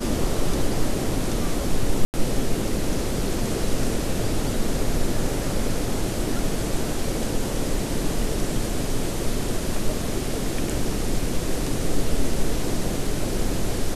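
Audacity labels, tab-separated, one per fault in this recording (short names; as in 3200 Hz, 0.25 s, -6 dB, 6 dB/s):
2.050000	2.140000	gap 89 ms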